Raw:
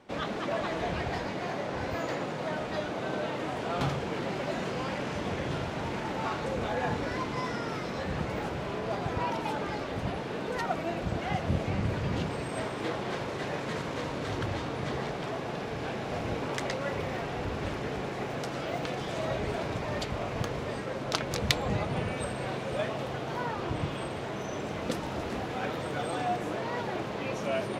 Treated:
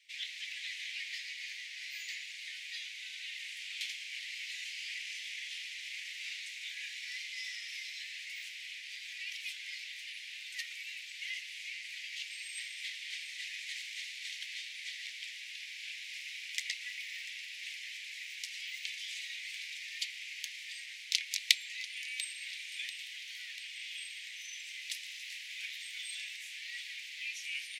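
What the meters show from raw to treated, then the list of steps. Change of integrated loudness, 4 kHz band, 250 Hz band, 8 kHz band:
-6.5 dB, +2.5 dB, under -40 dB, +2.5 dB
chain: steep high-pass 2 kHz 72 dB/octave; feedback delay 691 ms, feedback 51%, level -16 dB; trim +2.5 dB

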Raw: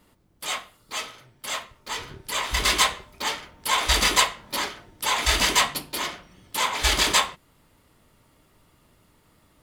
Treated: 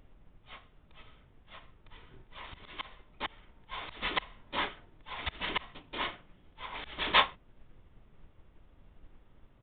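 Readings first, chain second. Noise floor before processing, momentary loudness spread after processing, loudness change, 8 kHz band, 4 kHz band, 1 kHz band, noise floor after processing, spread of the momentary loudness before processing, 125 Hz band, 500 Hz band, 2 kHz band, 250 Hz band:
-62 dBFS, 26 LU, -11.0 dB, under -40 dB, -13.0 dB, -10.0 dB, -62 dBFS, 14 LU, -15.0 dB, -10.5 dB, -10.5 dB, -10.5 dB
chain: high-pass 57 Hz; slow attack 382 ms; added noise brown -44 dBFS; resampled via 8 kHz; upward expansion 1.5:1, over -46 dBFS

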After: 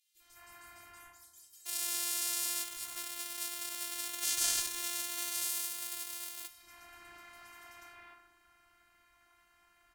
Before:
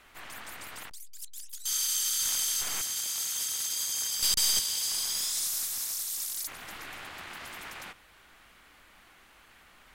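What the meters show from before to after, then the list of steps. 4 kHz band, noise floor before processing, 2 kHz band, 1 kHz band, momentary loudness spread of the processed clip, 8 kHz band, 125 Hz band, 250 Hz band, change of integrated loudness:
-8.5 dB, -58 dBFS, -3.0 dB, -3.0 dB, 22 LU, -7.0 dB, under -10 dB, -1.0 dB, -6.5 dB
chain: peaking EQ 350 Hz -7.5 dB 0.62 oct; FDN reverb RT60 0.88 s, low-frequency decay 1.55×, high-frequency decay 0.45×, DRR -5 dB; robot voice 346 Hz; three bands offset in time highs, lows, mids 150/200 ms, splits 430/3500 Hz; Chebyshev shaper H 7 -14 dB, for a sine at -8.5 dBFS; trim -4.5 dB

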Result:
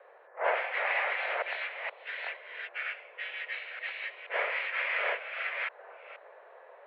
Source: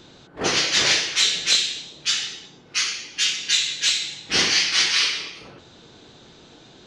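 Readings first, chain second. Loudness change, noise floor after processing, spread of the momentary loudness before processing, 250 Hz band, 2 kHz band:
-13.5 dB, -55 dBFS, 10 LU, under -25 dB, -5.5 dB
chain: chunks repeated in reverse 474 ms, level -1 dB; mistuned SSB +210 Hz 260–2000 Hz; trim -4 dB

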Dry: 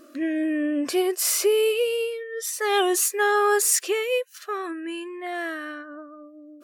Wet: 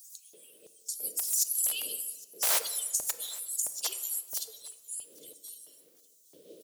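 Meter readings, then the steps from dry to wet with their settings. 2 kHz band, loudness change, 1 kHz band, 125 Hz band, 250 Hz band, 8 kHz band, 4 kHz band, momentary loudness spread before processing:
-18.0 dB, -6.5 dB, -20.0 dB, no reading, under -30 dB, -4.0 dB, -7.0 dB, 13 LU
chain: harmonic-percussive separation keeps percussive; wind noise 210 Hz -37 dBFS; elliptic band-stop 480–3200 Hz, stop band 40 dB; hum notches 60/120 Hz; compressor with a negative ratio -33 dBFS, ratio -0.5; LFO notch saw up 0.81 Hz 670–4000 Hz; RIAA curve recording; added noise blue -62 dBFS; integer overflow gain 16.5 dB; LFO high-pass square 1.5 Hz 610–6600 Hz; on a send: feedback delay 810 ms, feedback 32%, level -22.5 dB; on the sum: simulated room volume 1200 m³, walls mixed, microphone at 0.51 m; trim -3.5 dB

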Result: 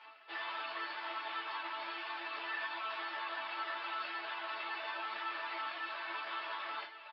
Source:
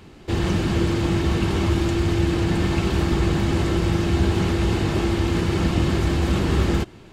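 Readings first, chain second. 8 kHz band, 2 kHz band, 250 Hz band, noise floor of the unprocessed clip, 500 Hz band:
under -40 dB, -7.5 dB, -36.5 dB, -45 dBFS, -24.0 dB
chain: high-pass 780 Hz 24 dB/octave; reverse; upward compressor, threshold -35 dBFS; reverse; peak limiter -24 dBFS, peak gain reduction 5.5 dB; resampled via 11.025 kHz; distance through air 250 m; chord resonator A3 sus4, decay 0.28 s; three-phase chorus; trim +14.5 dB

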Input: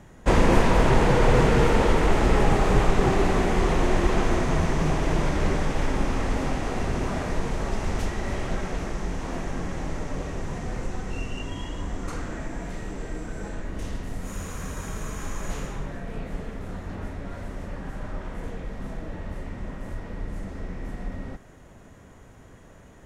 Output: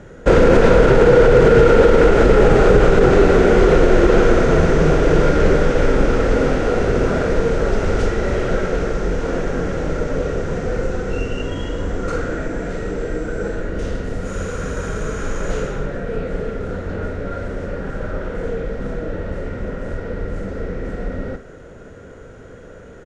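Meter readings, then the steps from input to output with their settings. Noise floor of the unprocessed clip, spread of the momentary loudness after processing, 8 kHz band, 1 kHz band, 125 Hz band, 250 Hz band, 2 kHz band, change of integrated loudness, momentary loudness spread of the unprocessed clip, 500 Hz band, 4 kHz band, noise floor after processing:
-49 dBFS, 16 LU, +2.0 dB, +5.0 dB, +6.5 dB, +8.0 dB, +8.5 dB, +9.5 dB, 17 LU, +13.5 dB, +4.5 dB, -39 dBFS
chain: Bessel low-pass 6.1 kHz, order 4; peaking EQ 910 Hz -5.5 dB 2.6 oct; doubling 46 ms -10.5 dB; small resonant body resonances 480/1400 Hz, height 15 dB, ringing for 20 ms; loudness maximiser +8 dB; trim -1 dB

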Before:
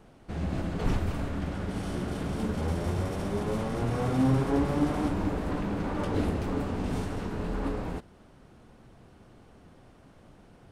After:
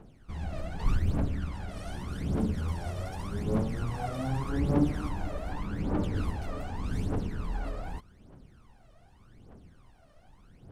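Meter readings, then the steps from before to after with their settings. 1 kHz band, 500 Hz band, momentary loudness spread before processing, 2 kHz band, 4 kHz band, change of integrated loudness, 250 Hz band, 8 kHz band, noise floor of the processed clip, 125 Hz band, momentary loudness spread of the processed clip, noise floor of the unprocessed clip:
-4.0 dB, -5.5 dB, 8 LU, -4.0 dB, -4.0 dB, -2.5 dB, -3.5 dB, -4.0 dB, -58 dBFS, -1.0 dB, 9 LU, -56 dBFS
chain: phaser 0.84 Hz, delay 1.7 ms, feedback 76%; trim -7.5 dB

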